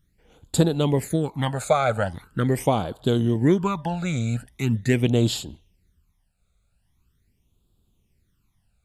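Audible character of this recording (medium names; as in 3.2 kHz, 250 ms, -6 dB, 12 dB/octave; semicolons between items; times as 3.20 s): phasing stages 12, 0.42 Hz, lowest notch 300–2000 Hz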